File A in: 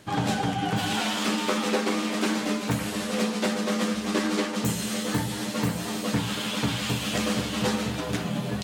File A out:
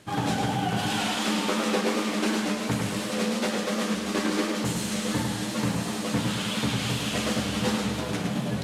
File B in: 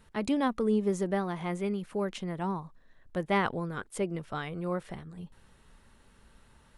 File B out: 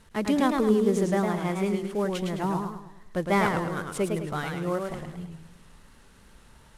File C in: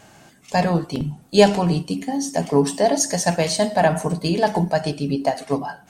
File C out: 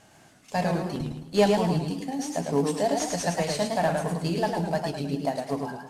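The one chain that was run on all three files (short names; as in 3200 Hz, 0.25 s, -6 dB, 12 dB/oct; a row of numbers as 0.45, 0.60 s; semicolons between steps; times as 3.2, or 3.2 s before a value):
CVSD 64 kbps; warbling echo 0.106 s, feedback 43%, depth 134 cents, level -4.5 dB; match loudness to -27 LUFS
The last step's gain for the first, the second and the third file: -1.5, +4.0, -7.5 dB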